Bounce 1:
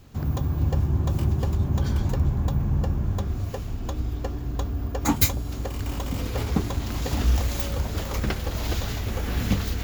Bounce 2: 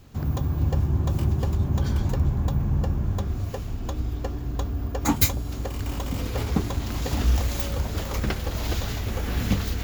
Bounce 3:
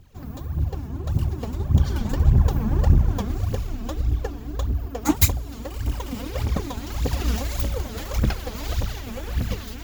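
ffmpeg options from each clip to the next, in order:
-af anull
-af "dynaudnorm=f=830:g=5:m=3.98,aeval=exprs='0.944*(cos(1*acos(clip(val(0)/0.944,-1,1)))-cos(1*PI/2))+0.0473*(cos(7*acos(clip(val(0)/0.944,-1,1)))-cos(7*PI/2))':c=same,aphaser=in_gain=1:out_gain=1:delay=4.8:decay=0.7:speed=1.7:type=triangular,volume=0.596"

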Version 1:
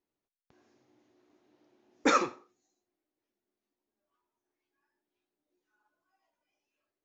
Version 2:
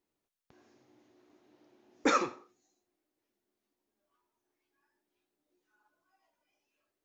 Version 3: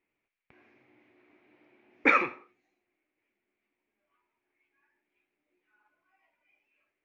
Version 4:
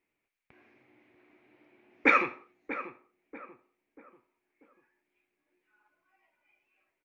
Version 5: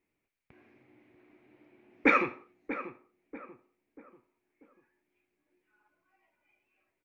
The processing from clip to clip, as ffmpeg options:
-af "acompressor=threshold=0.0178:ratio=1.5,volume=1.41"
-af "lowpass=f=2300:t=q:w=5.8"
-filter_complex "[0:a]asplit=2[s0][s1];[s1]adelay=639,lowpass=f=1400:p=1,volume=0.282,asplit=2[s2][s3];[s3]adelay=639,lowpass=f=1400:p=1,volume=0.42,asplit=2[s4][s5];[s5]adelay=639,lowpass=f=1400:p=1,volume=0.42,asplit=2[s6][s7];[s7]adelay=639,lowpass=f=1400:p=1,volume=0.42[s8];[s0][s2][s4][s6][s8]amix=inputs=5:normalize=0"
-af "lowshelf=f=410:g=8.5,volume=0.75"

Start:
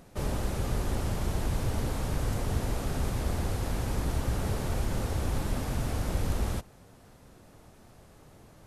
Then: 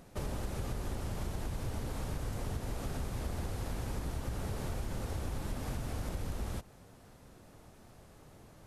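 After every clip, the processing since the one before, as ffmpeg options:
-af "acompressor=threshold=0.0282:ratio=6,volume=0.794"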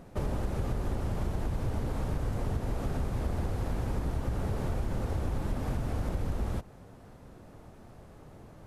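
-af "highshelf=f=2300:g=-10.5,volume=2"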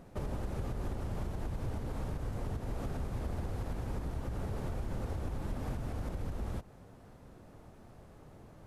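-af "alimiter=level_in=1.06:limit=0.0631:level=0:latency=1:release=117,volume=0.944,volume=0.668"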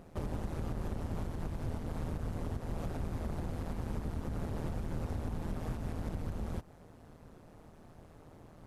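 -af "tremolo=f=160:d=0.788,volume=1.41"

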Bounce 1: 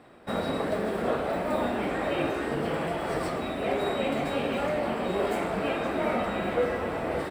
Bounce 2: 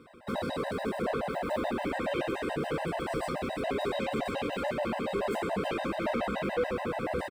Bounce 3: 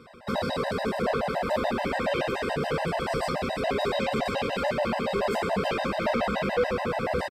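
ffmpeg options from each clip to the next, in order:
-af "asoftclip=type=tanh:threshold=0.0562,aecho=1:1:323:0.335,afftfilt=real='re*gt(sin(2*PI*7*pts/sr)*(1-2*mod(floor(b*sr/1024/520),2)),0)':imag='im*gt(sin(2*PI*7*pts/sr)*(1-2*mod(floor(b*sr/1024/520),2)),0)':win_size=1024:overlap=0.75,volume=1.26"
-af "equalizer=f=315:t=o:w=0.33:g=-10,equalizer=f=5000:t=o:w=0.33:g=8,equalizer=f=10000:t=o:w=0.33:g=-5,aresample=32000,aresample=44100,volume=1.88"

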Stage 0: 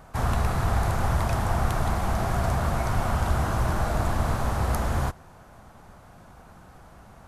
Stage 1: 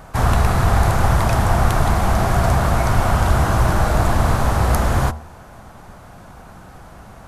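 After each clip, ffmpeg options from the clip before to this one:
-af "bandreject=f=76.4:t=h:w=4,bandreject=f=152.8:t=h:w=4,bandreject=f=229.2:t=h:w=4,bandreject=f=305.6:t=h:w=4,bandreject=f=382:t=h:w=4,bandreject=f=458.4:t=h:w=4,bandreject=f=534.8:t=h:w=4,bandreject=f=611.2:t=h:w=4,bandreject=f=687.6:t=h:w=4,bandreject=f=764:t=h:w=4,bandreject=f=840.4:t=h:w=4,bandreject=f=916.8:t=h:w=4,bandreject=f=993.2:t=h:w=4,bandreject=f=1069.6:t=h:w=4,bandreject=f=1146:t=h:w=4,bandreject=f=1222.4:t=h:w=4,bandreject=f=1298.8:t=h:w=4,bandreject=f=1375.2:t=h:w=4,volume=2.82"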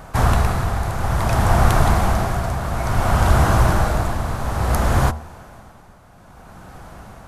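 -af "tremolo=f=0.58:d=0.64,volume=1.19"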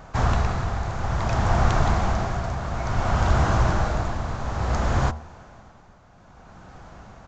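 -af "aresample=16000,aresample=44100,volume=0.562"

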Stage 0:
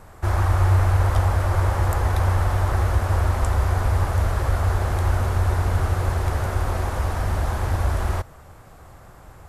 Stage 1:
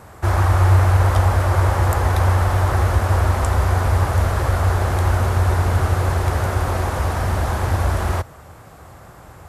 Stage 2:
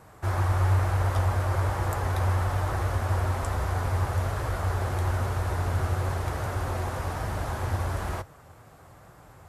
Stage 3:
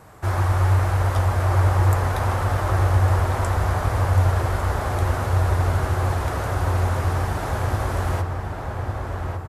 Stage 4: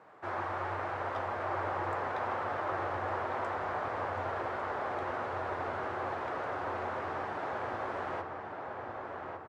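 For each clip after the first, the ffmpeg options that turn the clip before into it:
-af "highpass=65,volume=1.78"
-af "flanger=delay=6.1:depth=2.3:regen=-52:speed=1.1:shape=triangular,volume=0.562"
-filter_complex "[0:a]asplit=2[s0][s1];[s1]adelay=1153,lowpass=f=2600:p=1,volume=0.631,asplit=2[s2][s3];[s3]adelay=1153,lowpass=f=2600:p=1,volume=0.54,asplit=2[s4][s5];[s5]adelay=1153,lowpass=f=2600:p=1,volume=0.54,asplit=2[s6][s7];[s7]adelay=1153,lowpass=f=2600:p=1,volume=0.54,asplit=2[s8][s9];[s9]adelay=1153,lowpass=f=2600:p=1,volume=0.54,asplit=2[s10][s11];[s11]adelay=1153,lowpass=f=2600:p=1,volume=0.54,asplit=2[s12][s13];[s13]adelay=1153,lowpass=f=2600:p=1,volume=0.54[s14];[s0][s2][s4][s6][s8][s10][s12][s14]amix=inputs=8:normalize=0,volume=1.68"
-af "highpass=330,lowpass=2500,volume=0.447"

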